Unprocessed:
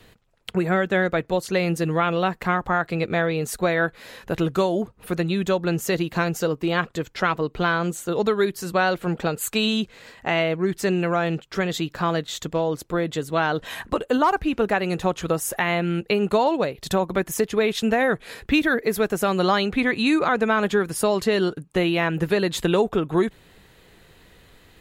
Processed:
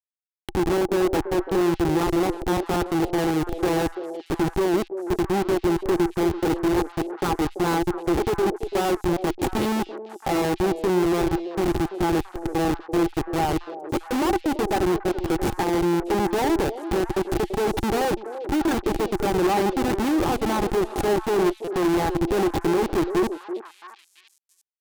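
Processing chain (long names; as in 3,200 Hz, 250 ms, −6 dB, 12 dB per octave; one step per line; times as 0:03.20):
comparator with hysteresis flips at −21 dBFS
hollow resonant body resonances 350/810 Hz, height 15 dB, ringing for 45 ms
tube saturation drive 17 dB, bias 0.3
echo through a band-pass that steps 336 ms, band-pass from 480 Hz, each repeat 1.4 octaves, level −7 dB
buffer that repeats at 0:09.13/0:21.64, samples 256, times 5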